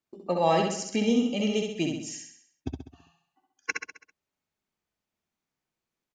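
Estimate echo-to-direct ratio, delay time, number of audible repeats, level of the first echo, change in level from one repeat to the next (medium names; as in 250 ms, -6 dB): -3.0 dB, 66 ms, 6, -4.0 dB, -6.0 dB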